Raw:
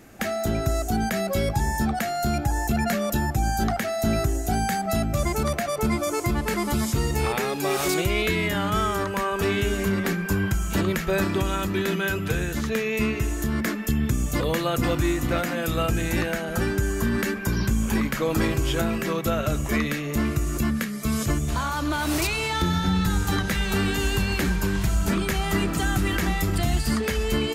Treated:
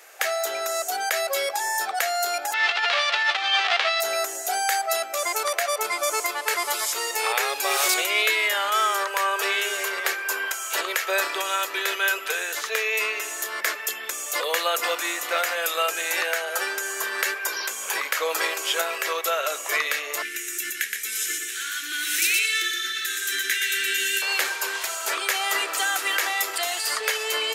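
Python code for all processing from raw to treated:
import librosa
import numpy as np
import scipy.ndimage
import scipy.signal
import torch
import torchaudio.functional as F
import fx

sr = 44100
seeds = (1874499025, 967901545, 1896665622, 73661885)

y = fx.envelope_flatten(x, sr, power=0.1, at=(2.52, 4.0), fade=0.02)
y = fx.lowpass(y, sr, hz=3500.0, slope=24, at=(2.52, 4.0), fade=0.02)
y = fx.over_compress(y, sr, threshold_db=-29.0, ratio=-0.5, at=(2.52, 4.0), fade=0.02)
y = fx.chain(y, sr, fx.ellip_bandstop(low_hz=360.0, high_hz=1600.0, order=3, stop_db=40),
    fx.peak_eq(hz=4600.0, db=-9.0, octaves=0.23),
    fx.echo_single(ms=120, db=-3.5), at=(20.22, 24.22))
y = scipy.signal.sosfilt(scipy.signal.butter(6, 440.0, 'highpass', fs=sr, output='sos'), y)
y = fx.tilt_shelf(y, sr, db=-5.5, hz=740.0)
y = y * 10.0 ** (1.5 / 20.0)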